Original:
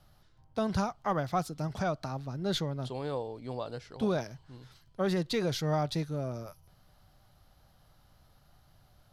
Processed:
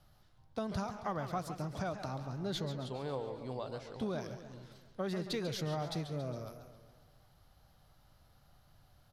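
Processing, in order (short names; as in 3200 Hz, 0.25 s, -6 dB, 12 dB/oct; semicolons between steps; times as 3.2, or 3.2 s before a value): compressor 2.5:1, threshold -32 dBFS, peak gain reduction 5.5 dB; speakerphone echo 0.16 s, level -12 dB; warbling echo 0.137 s, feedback 57%, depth 160 cents, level -11 dB; gain -3 dB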